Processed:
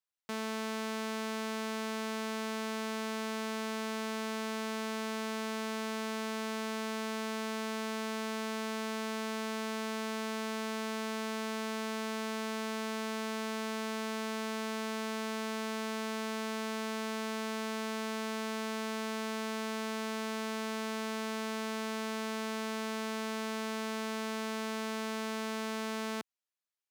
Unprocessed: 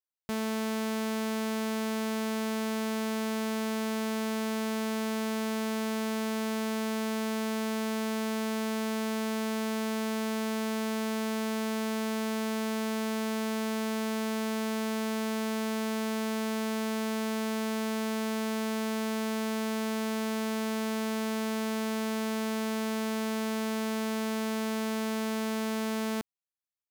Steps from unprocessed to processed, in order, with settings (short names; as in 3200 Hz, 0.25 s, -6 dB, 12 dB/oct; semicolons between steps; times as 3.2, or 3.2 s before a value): low shelf 430 Hz +4 dB; overloaded stage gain 28 dB; weighting filter A